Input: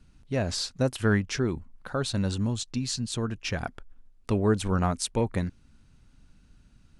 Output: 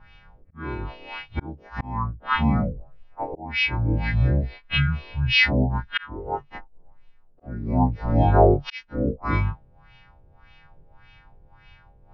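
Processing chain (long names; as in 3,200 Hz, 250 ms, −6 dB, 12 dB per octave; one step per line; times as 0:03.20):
every partial snapped to a pitch grid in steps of 2 semitones
volume swells 470 ms
auto-filter low-pass sine 3 Hz 780–4,800 Hz
wrong playback speed 78 rpm record played at 45 rpm
level +8 dB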